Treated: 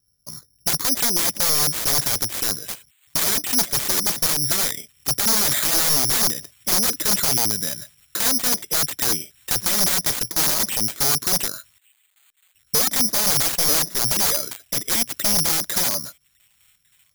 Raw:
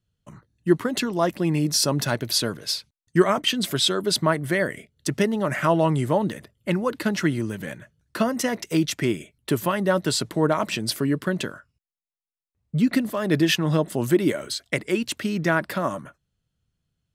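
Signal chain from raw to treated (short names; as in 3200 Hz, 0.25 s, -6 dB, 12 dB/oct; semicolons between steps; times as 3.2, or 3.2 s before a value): wrapped overs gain 20.5 dB; thin delay 1.153 s, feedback 47%, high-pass 5200 Hz, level -17 dB; careless resampling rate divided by 8×, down filtered, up zero stuff; gain -1 dB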